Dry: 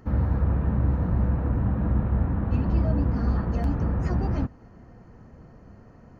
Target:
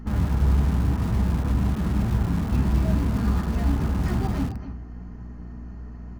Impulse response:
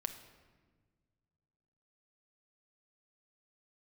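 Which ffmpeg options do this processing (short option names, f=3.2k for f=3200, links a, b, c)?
-filter_complex "[0:a]aeval=exprs='val(0)+0.01*(sin(2*PI*60*n/s)+sin(2*PI*2*60*n/s)/2+sin(2*PI*3*60*n/s)/3+sin(2*PI*4*60*n/s)/4+sin(2*PI*5*60*n/s)/5)':c=same[a];[1:a]atrim=start_sample=2205,atrim=end_sample=6174,asetrate=52920,aresample=44100[b];[a][b]afir=irnorm=-1:irlink=0,flanger=delay=8.4:depth=6.7:regen=69:speed=0.95:shape=triangular,equalizer=f=540:t=o:w=0.3:g=-11,aecho=1:1:265:0.2,asplit=2[c][d];[d]aeval=exprs='(mod(47.3*val(0)+1,2)-1)/47.3':c=same,volume=-12dB[e];[c][e]amix=inputs=2:normalize=0,volume=8dB"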